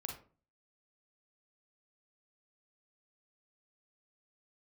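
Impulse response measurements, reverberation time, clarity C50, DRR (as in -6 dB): 0.40 s, 5.5 dB, 1.5 dB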